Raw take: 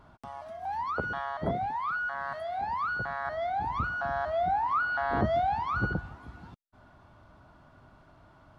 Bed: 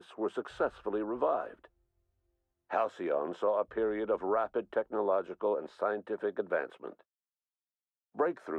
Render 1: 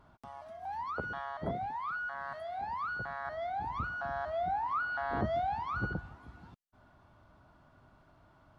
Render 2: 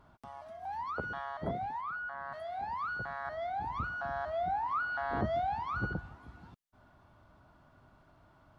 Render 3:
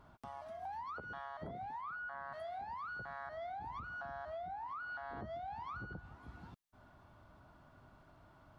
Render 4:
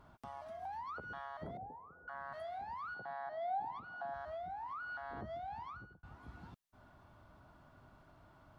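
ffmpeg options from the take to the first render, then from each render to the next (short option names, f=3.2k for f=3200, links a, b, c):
-af "volume=-5.5dB"
-filter_complex "[0:a]asplit=3[a][b][c];[a]afade=t=out:st=1.8:d=0.02[d];[b]highshelf=f=3.1k:g=-11.5,afade=t=in:st=1.8:d=0.02,afade=t=out:st=2.32:d=0.02[e];[c]afade=t=in:st=2.32:d=0.02[f];[d][e][f]amix=inputs=3:normalize=0"
-af "alimiter=level_in=8dB:limit=-24dB:level=0:latency=1:release=420,volume=-8dB,acompressor=threshold=-42dB:ratio=6"
-filter_complex "[0:a]asettb=1/sr,asplit=3[a][b][c];[a]atrim=end=1.574[d];[b]atrim=start=1.57:end=2.08,asetpts=PTS-STARTPTS,afade=t=in:d=0.004:c=qsin,afade=t=out:st=0.506:d=0.004:c=qsin,lowpass=f=490:t=q:w=5.4[e];[c]atrim=start=2.076[f];[d][e]acrossfade=d=0.004:c1=hsin:c2=qsin[g];[g][f]acrossfade=d=0.004:c1=qsin:c2=hsin,asettb=1/sr,asplit=3[h][i][j];[h]atrim=end=2.944[k];[i]atrim=start=2.94:end=4.14,asetpts=PTS-STARTPTS,afade=t=in:d=0.004:c=qsin,afade=t=out:st=1.196:d=0.004:c=qsin,highpass=180,equalizer=f=770:t=q:w=4:g=9,equalizer=f=1.3k:t=q:w=4:g=-7,equalizer=f=2.4k:t=q:w=4:g=-5,lowpass=f=4.7k:w=0.5412,lowpass=f=4.7k:w=1.3066[l];[j]atrim=start=4.136[m];[k][l]acrossfade=d=0.004:c1=hsin:c2=qsin[n];[n][m]acrossfade=d=0.004:c1=qsin:c2=hsin,asplit=2[o][p];[o]atrim=end=6.03,asetpts=PTS-STARTPTS,afade=t=out:st=5.56:d=0.47[q];[p]atrim=start=6.03,asetpts=PTS-STARTPTS,afade=t=in:d=0.004:c=hsin[r];[q][r]concat=n=2:v=0:a=1"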